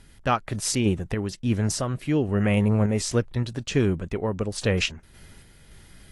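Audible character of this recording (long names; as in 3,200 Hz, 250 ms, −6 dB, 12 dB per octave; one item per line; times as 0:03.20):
sample-and-hold tremolo
AAC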